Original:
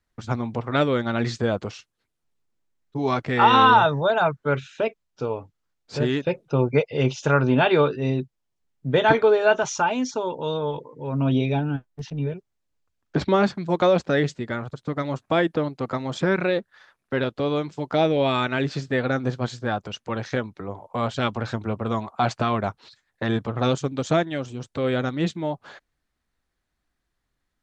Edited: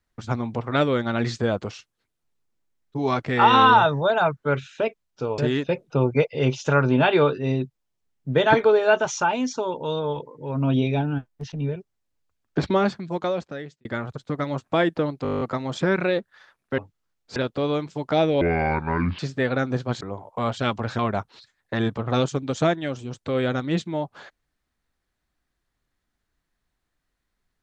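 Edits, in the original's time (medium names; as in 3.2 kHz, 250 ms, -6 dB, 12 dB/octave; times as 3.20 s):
5.38–5.96 s: move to 17.18 s
13.19–14.43 s: fade out
15.81 s: stutter 0.02 s, 10 plays
18.23–18.72 s: speed 63%
19.54–20.58 s: delete
21.56–22.48 s: delete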